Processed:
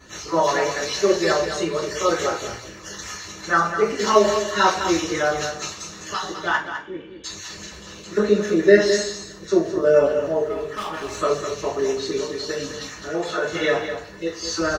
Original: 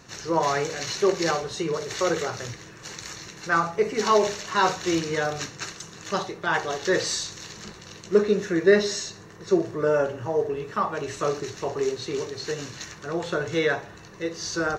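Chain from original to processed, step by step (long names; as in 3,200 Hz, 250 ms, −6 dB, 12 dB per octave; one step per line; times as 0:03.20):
time-frequency cells dropped at random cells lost 20%
0:06.55–0:07.24: formant resonators in series i
0:10.43–0:11.17: gain into a clipping stage and back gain 30.5 dB
0:13.07–0:13.52: high-pass filter 180 Hz
single-tap delay 206 ms −9 dB
coupled-rooms reverb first 0.3 s, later 1.6 s, from −26 dB, DRR −9.5 dB
level −5.5 dB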